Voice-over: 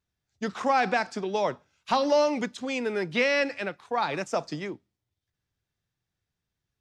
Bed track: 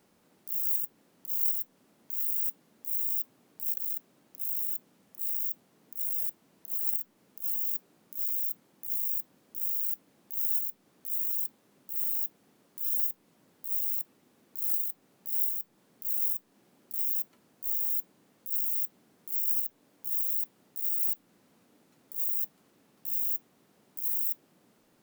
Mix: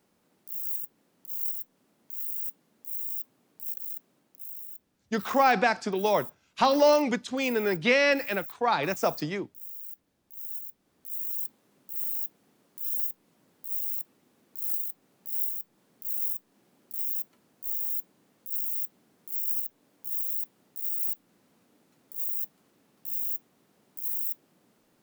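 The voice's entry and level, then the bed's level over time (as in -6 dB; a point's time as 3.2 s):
4.70 s, +2.0 dB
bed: 4.13 s -3.5 dB
4.69 s -10.5 dB
10.27 s -10.5 dB
11.42 s -1 dB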